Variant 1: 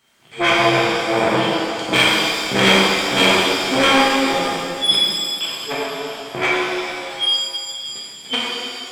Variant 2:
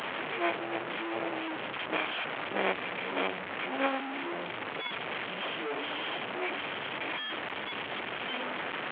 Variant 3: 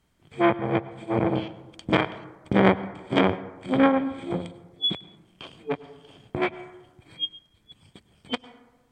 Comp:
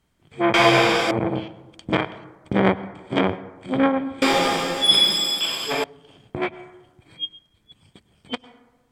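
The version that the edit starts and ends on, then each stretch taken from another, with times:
3
0:00.54–0:01.11: punch in from 1
0:04.22–0:05.84: punch in from 1
not used: 2

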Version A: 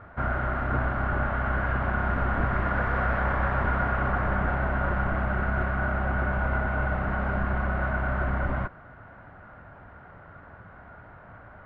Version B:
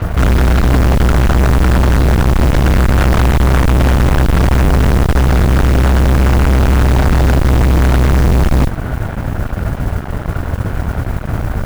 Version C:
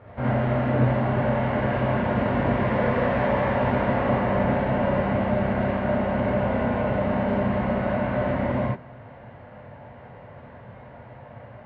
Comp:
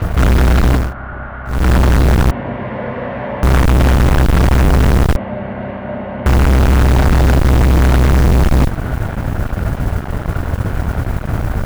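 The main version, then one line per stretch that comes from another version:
B
0:00.82–0:01.57: punch in from A, crossfade 0.24 s
0:02.31–0:03.43: punch in from C
0:05.16–0:06.26: punch in from C

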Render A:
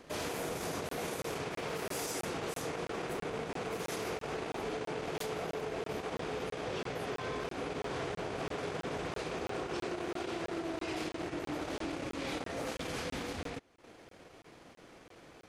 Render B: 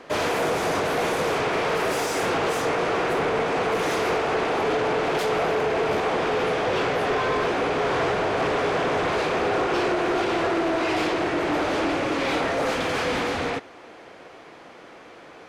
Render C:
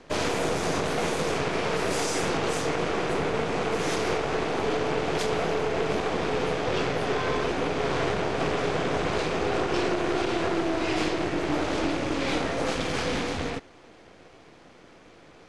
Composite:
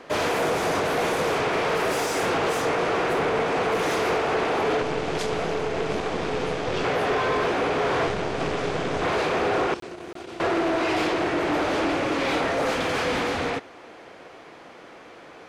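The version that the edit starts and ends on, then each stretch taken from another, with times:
B
0:04.82–0:06.84: punch in from C
0:08.07–0:09.02: punch in from C
0:09.74–0:10.40: punch in from A

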